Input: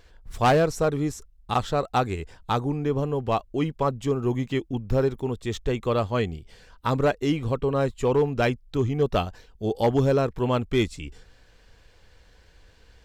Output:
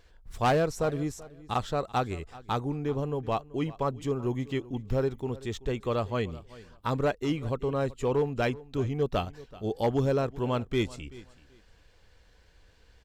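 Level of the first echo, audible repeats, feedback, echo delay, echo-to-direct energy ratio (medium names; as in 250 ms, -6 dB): -19.5 dB, 2, 20%, 382 ms, -19.5 dB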